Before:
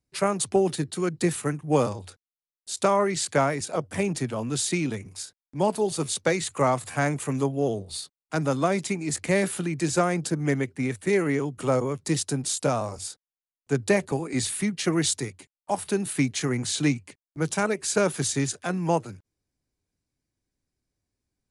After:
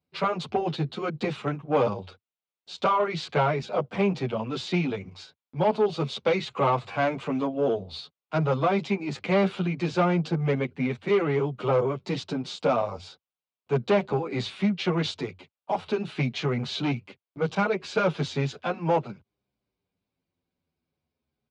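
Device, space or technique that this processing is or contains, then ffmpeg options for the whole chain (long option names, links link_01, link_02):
barber-pole flanger into a guitar amplifier: -filter_complex "[0:a]asplit=2[link_01][link_02];[link_02]adelay=8.7,afreqshift=-0.39[link_03];[link_01][link_03]amix=inputs=2:normalize=1,asoftclip=type=tanh:threshold=-22dB,highpass=100,equalizer=frequency=110:width_type=q:width=4:gain=-8,equalizer=frequency=300:width_type=q:width=4:gain=-8,equalizer=frequency=1800:width_type=q:width=4:gain=-10,lowpass=frequency=3700:width=0.5412,lowpass=frequency=3700:width=1.3066,volume=7.5dB"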